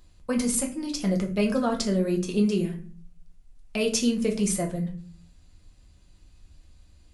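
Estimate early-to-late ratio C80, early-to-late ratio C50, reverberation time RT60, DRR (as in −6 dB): 16.0 dB, 11.5 dB, 0.40 s, 1.0 dB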